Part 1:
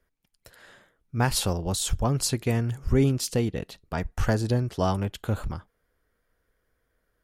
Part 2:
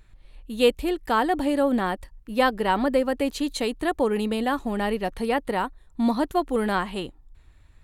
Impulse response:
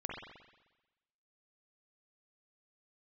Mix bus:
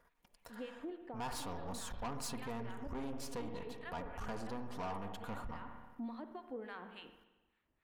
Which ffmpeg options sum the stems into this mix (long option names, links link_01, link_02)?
-filter_complex "[0:a]aeval=exprs='if(lt(val(0),0),0.447*val(0),val(0))':channel_layout=same,equalizer=frequency=950:width_type=o:width=1.1:gain=13.5,aecho=1:1:4.2:0.44,volume=0.5dB,asplit=2[link_01][link_02];[link_02]volume=-16dB[link_03];[1:a]acrossover=split=180 3400:gain=0.0891 1 0.0708[link_04][link_05][link_06];[link_04][link_05][link_06]amix=inputs=3:normalize=0,acompressor=threshold=-23dB:ratio=6,acrossover=split=930[link_07][link_08];[link_07]aeval=exprs='val(0)*(1-1/2+1/2*cos(2*PI*3.5*n/s))':channel_layout=same[link_09];[link_08]aeval=exprs='val(0)*(1-1/2-1/2*cos(2*PI*3.5*n/s))':channel_layout=same[link_10];[link_09][link_10]amix=inputs=2:normalize=0,volume=-14dB,asplit=3[link_11][link_12][link_13];[link_12]volume=-5.5dB[link_14];[link_13]apad=whole_len=319243[link_15];[link_01][link_15]sidechaincompress=threshold=-52dB:ratio=4:attack=10:release=712[link_16];[2:a]atrim=start_sample=2205[link_17];[link_03][link_14]amix=inputs=2:normalize=0[link_18];[link_18][link_17]afir=irnorm=-1:irlink=0[link_19];[link_16][link_11][link_19]amix=inputs=3:normalize=0,asoftclip=type=tanh:threshold=-27.5dB,alimiter=level_in=12.5dB:limit=-24dB:level=0:latency=1:release=213,volume=-12.5dB"